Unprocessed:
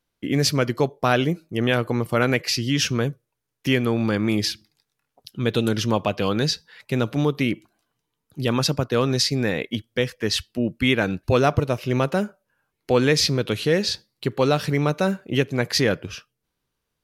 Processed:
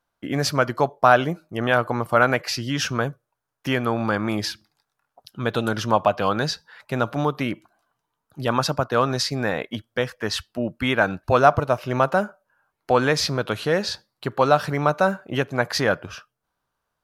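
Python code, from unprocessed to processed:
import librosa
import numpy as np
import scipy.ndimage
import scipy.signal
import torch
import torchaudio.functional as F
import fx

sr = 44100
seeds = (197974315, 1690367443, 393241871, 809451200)

y = fx.band_shelf(x, sr, hz=970.0, db=10.5, octaves=1.7)
y = y * librosa.db_to_amplitude(-3.5)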